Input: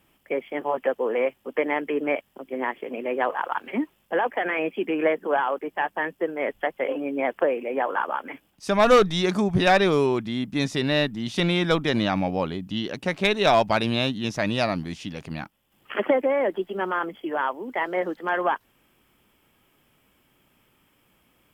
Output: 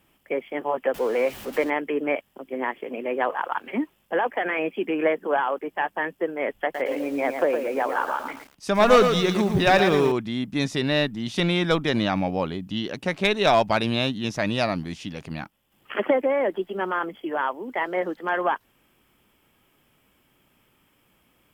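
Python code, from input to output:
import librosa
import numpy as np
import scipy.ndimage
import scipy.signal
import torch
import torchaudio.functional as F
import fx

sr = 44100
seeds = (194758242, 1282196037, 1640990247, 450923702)

y = fx.zero_step(x, sr, step_db=-34.5, at=(0.94, 1.7))
y = fx.echo_crushed(y, sr, ms=114, feedback_pct=35, bits=7, wet_db=-6.5, at=(6.54, 10.12))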